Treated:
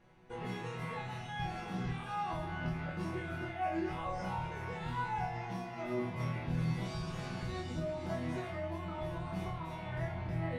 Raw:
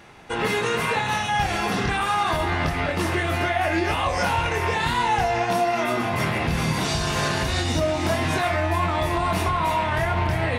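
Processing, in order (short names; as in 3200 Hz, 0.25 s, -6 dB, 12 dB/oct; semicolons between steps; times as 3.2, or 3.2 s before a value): tilt -2.5 dB/oct; resonator bank B2 sus4, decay 0.39 s; gain -2.5 dB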